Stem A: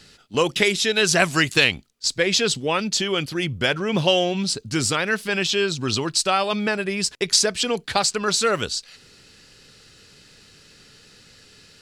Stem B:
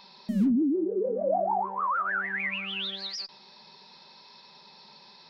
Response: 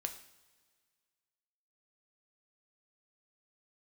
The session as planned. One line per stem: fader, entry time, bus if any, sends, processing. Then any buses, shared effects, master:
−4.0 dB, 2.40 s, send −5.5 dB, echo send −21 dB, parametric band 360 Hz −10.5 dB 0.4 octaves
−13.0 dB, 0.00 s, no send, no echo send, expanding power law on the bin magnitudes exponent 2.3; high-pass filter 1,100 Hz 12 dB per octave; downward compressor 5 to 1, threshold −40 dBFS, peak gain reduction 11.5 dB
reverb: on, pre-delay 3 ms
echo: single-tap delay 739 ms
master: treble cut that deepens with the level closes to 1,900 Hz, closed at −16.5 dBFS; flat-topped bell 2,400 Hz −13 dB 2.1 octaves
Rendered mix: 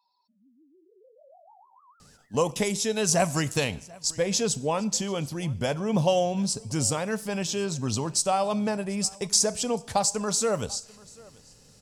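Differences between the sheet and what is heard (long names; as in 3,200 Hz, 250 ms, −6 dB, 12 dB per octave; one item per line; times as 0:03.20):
stem A: entry 2.40 s → 2.00 s
master: missing treble cut that deepens with the level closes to 1,900 Hz, closed at −16.5 dBFS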